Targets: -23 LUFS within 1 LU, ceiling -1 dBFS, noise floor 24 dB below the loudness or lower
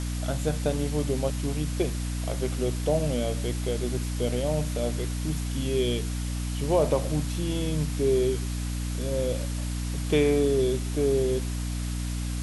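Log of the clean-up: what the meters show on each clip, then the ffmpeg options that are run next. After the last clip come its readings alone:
hum 60 Hz; highest harmonic 300 Hz; hum level -28 dBFS; noise floor -31 dBFS; noise floor target -52 dBFS; loudness -27.5 LUFS; peak level -11.5 dBFS; loudness target -23.0 LUFS
-> -af "bandreject=f=60:t=h:w=4,bandreject=f=120:t=h:w=4,bandreject=f=180:t=h:w=4,bandreject=f=240:t=h:w=4,bandreject=f=300:t=h:w=4"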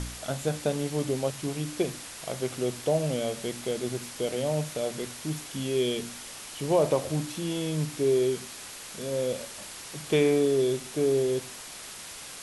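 hum not found; noise floor -43 dBFS; noise floor target -53 dBFS
-> -af "afftdn=nr=10:nf=-43"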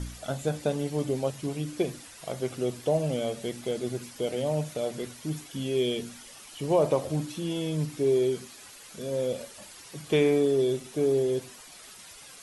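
noise floor -48 dBFS; noise floor target -53 dBFS
-> -af "afftdn=nr=6:nf=-48"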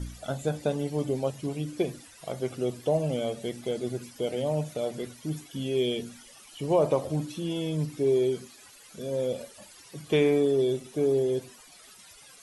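noise floor -52 dBFS; noise floor target -53 dBFS
-> -af "afftdn=nr=6:nf=-52"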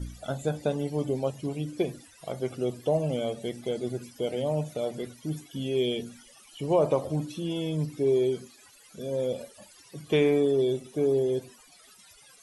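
noise floor -55 dBFS; loudness -29.0 LUFS; peak level -13.0 dBFS; loudness target -23.0 LUFS
-> -af "volume=2"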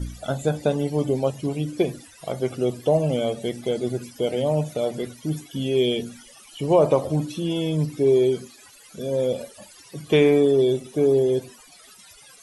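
loudness -23.0 LUFS; peak level -6.5 dBFS; noise floor -49 dBFS

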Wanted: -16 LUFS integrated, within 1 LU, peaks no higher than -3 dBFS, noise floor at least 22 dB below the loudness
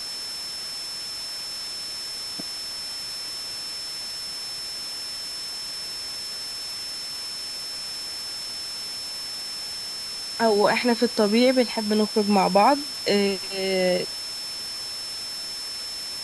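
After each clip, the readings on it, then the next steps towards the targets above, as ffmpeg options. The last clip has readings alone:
steady tone 5.3 kHz; tone level -31 dBFS; noise floor -33 dBFS; noise floor target -48 dBFS; loudness -26.0 LUFS; peak level -6.0 dBFS; loudness target -16.0 LUFS
-> -af "bandreject=f=5300:w=30"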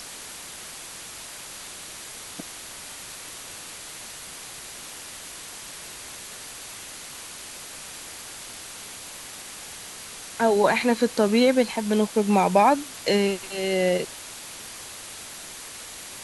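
steady tone not found; noise floor -40 dBFS; noise floor target -50 dBFS
-> -af "afftdn=nr=10:nf=-40"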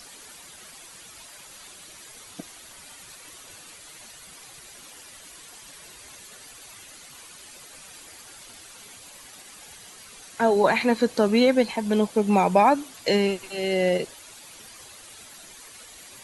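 noise floor -46 dBFS; loudness -22.0 LUFS; peak level -6.5 dBFS; loudness target -16.0 LUFS
-> -af "volume=2,alimiter=limit=0.708:level=0:latency=1"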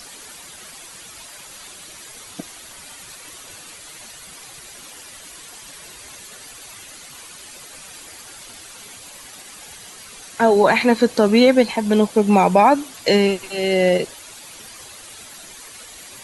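loudness -16.5 LUFS; peak level -3.0 dBFS; noise floor -40 dBFS

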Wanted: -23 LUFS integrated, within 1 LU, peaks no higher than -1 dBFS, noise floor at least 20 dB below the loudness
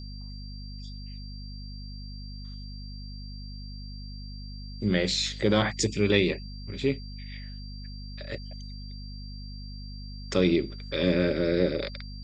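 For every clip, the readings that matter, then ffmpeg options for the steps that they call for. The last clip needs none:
hum 50 Hz; highest harmonic 250 Hz; hum level -37 dBFS; steady tone 4.7 kHz; tone level -47 dBFS; loudness -27.0 LUFS; peak level -9.0 dBFS; loudness target -23.0 LUFS
-> -af "bandreject=f=50:t=h:w=6,bandreject=f=100:t=h:w=6,bandreject=f=150:t=h:w=6,bandreject=f=200:t=h:w=6,bandreject=f=250:t=h:w=6"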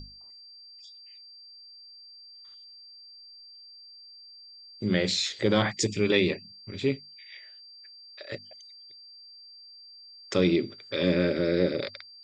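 hum not found; steady tone 4.7 kHz; tone level -47 dBFS
-> -af "bandreject=f=4700:w=30"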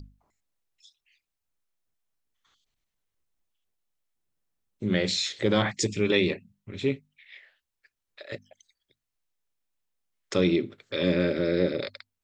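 steady tone not found; loudness -27.0 LUFS; peak level -8.5 dBFS; loudness target -23.0 LUFS
-> -af "volume=1.58"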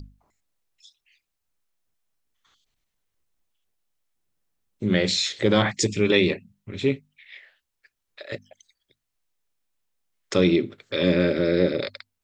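loudness -23.0 LUFS; peak level -4.5 dBFS; noise floor -81 dBFS

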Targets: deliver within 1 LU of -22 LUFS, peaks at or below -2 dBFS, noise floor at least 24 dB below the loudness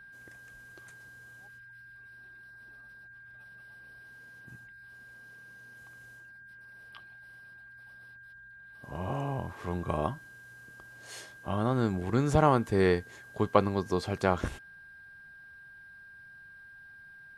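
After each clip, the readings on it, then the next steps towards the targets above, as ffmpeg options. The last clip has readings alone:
steady tone 1.6 kHz; tone level -49 dBFS; loudness -29.5 LUFS; peak level -7.0 dBFS; loudness target -22.0 LUFS
-> -af "bandreject=f=1600:w=30"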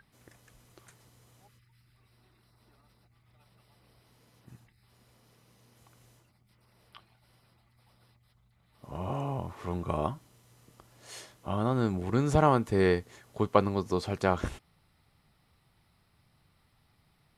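steady tone not found; loudness -29.5 LUFS; peak level -7.0 dBFS; loudness target -22.0 LUFS
-> -af "volume=2.37,alimiter=limit=0.794:level=0:latency=1"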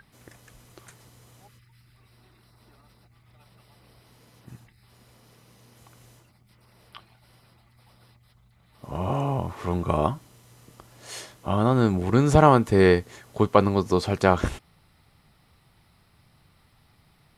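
loudness -22.5 LUFS; peak level -2.0 dBFS; noise floor -61 dBFS

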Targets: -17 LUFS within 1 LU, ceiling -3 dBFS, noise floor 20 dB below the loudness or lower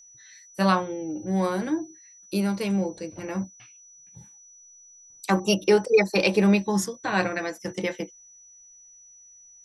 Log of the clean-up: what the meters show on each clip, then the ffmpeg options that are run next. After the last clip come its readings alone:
steady tone 5.9 kHz; tone level -49 dBFS; loudness -25.0 LUFS; peak level -8.0 dBFS; loudness target -17.0 LUFS
-> -af "bandreject=f=5900:w=30"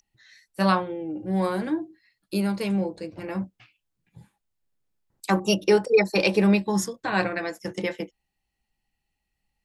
steady tone not found; loudness -25.0 LUFS; peak level -8.0 dBFS; loudness target -17.0 LUFS
-> -af "volume=2.51,alimiter=limit=0.708:level=0:latency=1"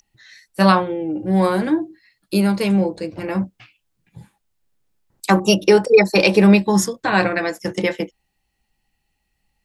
loudness -17.5 LUFS; peak level -3.0 dBFS; noise floor -73 dBFS

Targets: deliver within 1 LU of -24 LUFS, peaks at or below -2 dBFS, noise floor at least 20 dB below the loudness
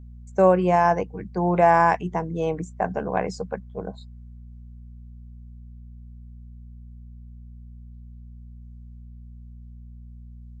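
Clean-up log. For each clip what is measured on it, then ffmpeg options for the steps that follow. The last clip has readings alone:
hum 60 Hz; highest harmonic 240 Hz; hum level -40 dBFS; loudness -22.5 LUFS; peak level -5.5 dBFS; loudness target -24.0 LUFS
-> -af "bandreject=f=60:t=h:w=4,bandreject=f=120:t=h:w=4,bandreject=f=180:t=h:w=4,bandreject=f=240:t=h:w=4"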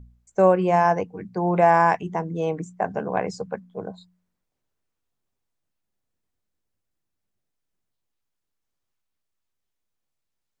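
hum not found; loudness -22.0 LUFS; peak level -5.5 dBFS; loudness target -24.0 LUFS
-> -af "volume=0.794"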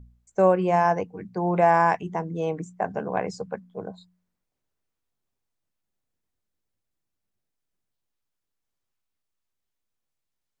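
loudness -24.0 LUFS; peak level -7.5 dBFS; noise floor -82 dBFS

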